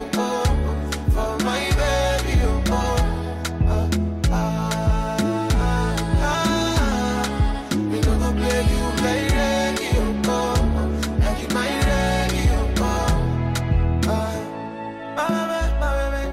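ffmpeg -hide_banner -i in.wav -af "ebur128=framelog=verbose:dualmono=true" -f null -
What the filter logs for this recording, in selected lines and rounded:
Integrated loudness:
  I:         -18.7 LUFS
  Threshold: -28.7 LUFS
Loudness range:
  LRA:         1.4 LU
  Threshold: -38.5 LUFS
  LRA low:   -19.4 LUFS
  LRA high:  -18.0 LUFS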